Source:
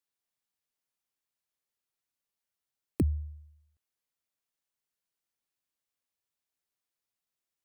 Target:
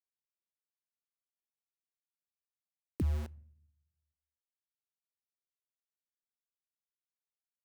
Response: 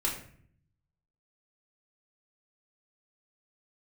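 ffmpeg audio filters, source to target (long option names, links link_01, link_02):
-filter_complex "[0:a]aeval=exprs='val(0)*gte(abs(val(0)),0.0133)':channel_layout=same,alimiter=level_in=1.5dB:limit=-24dB:level=0:latency=1:release=100,volume=-1.5dB,asplit=2[link_01][link_02];[1:a]atrim=start_sample=2205[link_03];[link_02][link_03]afir=irnorm=-1:irlink=0,volume=-26.5dB[link_04];[link_01][link_04]amix=inputs=2:normalize=0"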